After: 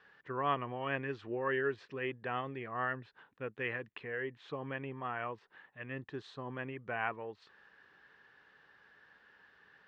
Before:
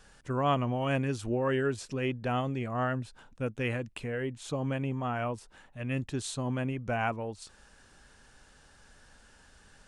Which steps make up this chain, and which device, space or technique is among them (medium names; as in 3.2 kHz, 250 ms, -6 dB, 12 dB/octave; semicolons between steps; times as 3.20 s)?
5.83–6.59 s: dynamic bell 2.4 kHz, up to -6 dB, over -52 dBFS, Q 1.3; kitchen radio (cabinet simulation 180–3700 Hz, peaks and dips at 240 Hz -7 dB, 420 Hz +4 dB, 610 Hz -4 dB, 1.1 kHz +5 dB, 1.8 kHz +10 dB); trim -6.5 dB